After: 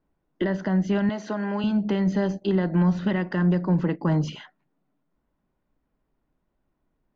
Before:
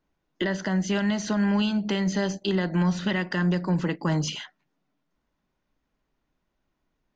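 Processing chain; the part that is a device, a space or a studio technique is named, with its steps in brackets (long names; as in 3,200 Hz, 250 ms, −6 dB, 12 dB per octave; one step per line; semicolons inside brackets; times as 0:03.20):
through cloth (low-pass filter 6,500 Hz 12 dB per octave; high-shelf EQ 2,000 Hz −15 dB)
0:01.09–0:01.64: high-pass filter 330 Hz 12 dB per octave
level +3 dB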